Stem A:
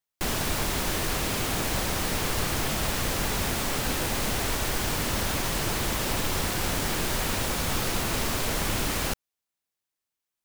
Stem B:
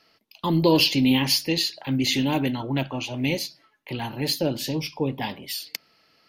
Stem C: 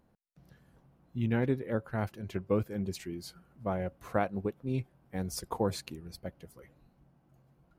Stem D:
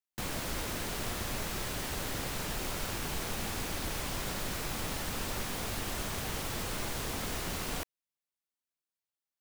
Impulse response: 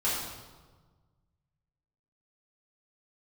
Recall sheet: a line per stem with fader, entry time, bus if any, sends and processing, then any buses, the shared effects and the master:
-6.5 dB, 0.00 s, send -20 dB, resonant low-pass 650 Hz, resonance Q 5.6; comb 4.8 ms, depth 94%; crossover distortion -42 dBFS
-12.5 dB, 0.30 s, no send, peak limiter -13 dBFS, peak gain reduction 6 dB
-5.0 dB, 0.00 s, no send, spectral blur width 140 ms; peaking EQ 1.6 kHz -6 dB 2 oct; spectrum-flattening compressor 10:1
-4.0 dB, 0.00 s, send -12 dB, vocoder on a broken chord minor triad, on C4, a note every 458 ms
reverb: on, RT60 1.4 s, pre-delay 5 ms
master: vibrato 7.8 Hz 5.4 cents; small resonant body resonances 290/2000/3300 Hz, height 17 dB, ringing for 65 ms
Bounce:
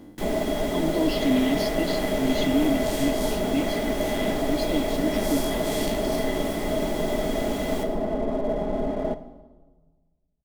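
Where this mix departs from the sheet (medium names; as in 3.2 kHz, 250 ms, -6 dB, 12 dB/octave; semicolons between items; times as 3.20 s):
stem C -5.0 dB -> +3.0 dB; stem D: missing vocoder on a broken chord minor triad, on C4, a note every 458 ms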